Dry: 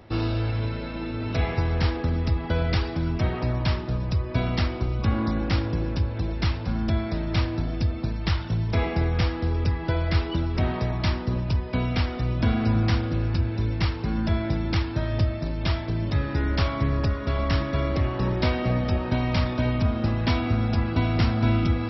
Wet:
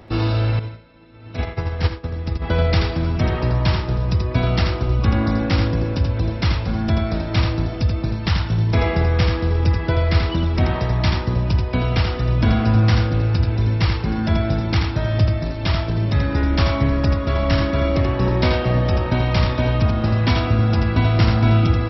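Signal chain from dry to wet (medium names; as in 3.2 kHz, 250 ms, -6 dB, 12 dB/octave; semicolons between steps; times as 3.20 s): delay 83 ms -5 dB; 0.59–2.42 s: upward expansion 2.5:1, over -32 dBFS; trim +5 dB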